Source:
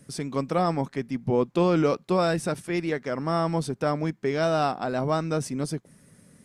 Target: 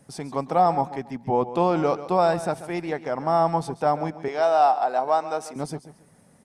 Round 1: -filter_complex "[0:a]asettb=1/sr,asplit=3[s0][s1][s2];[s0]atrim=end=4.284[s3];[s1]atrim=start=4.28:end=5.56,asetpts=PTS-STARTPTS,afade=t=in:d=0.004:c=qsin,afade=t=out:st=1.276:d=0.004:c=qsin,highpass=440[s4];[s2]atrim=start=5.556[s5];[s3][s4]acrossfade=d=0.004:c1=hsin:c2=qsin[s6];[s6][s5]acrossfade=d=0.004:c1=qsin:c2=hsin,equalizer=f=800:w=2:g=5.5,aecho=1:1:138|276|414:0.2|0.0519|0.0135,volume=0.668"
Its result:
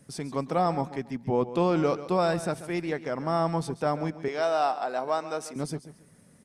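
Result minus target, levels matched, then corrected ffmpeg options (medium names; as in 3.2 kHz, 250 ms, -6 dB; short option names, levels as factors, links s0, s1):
1 kHz band -3.0 dB
-filter_complex "[0:a]asettb=1/sr,asplit=3[s0][s1][s2];[s0]atrim=end=4.284[s3];[s1]atrim=start=4.28:end=5.56,asetpts=PTS-STARTPTS,afade=t=in:d=0.004:c=qsin,afade=t=out:st=1.276:d=0.004:c=qsin,highpass=440[s4];[s2]atrim=start=5.556[s5];[s3][s4]acrossfade=d=0.004:c1=hsin:c2=qsin[s6];[s6][s5]acrossfade=d=0.004:c1=qsin:c2=hsin,equalizer=f=800:w=2:g=15.5,aecho=1:1:138|276|414:0.2|0.0519|0.0135,volume=0.668"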